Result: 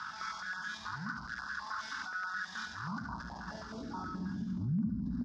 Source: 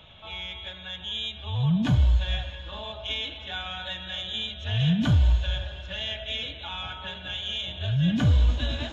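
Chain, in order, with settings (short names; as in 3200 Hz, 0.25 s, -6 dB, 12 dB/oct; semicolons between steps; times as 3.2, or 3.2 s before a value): dynamic EQ 3000 Hz, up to -7 dB, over -45 dBFS, Q 1.7; in parallel at -11 dB: fuzz box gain 49 dB, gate -56 dBFS; on the sum: EQ curve 110 Hz 0 dB, 220 Hz +6 dB, 550 Hz -22 dB, 950 Hz +3 dB, 1500 Hz +6 dB, 2300 Hz -18 dB, 3300 Hz -16 dB, 5000 Hz +13 dB, 9800 Hz -15 dB; feedback echo 0.126 s, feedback 43%, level -4 dB; band-pass sweep 1500 Hz -> 220 Hz, 4.43–7.69; compressor 4:1, threshold -33 dBFS, peak gain reduction 17.5 dB; tempo 1.7×; stepped notch 9.4 Hz 550–2100 Hz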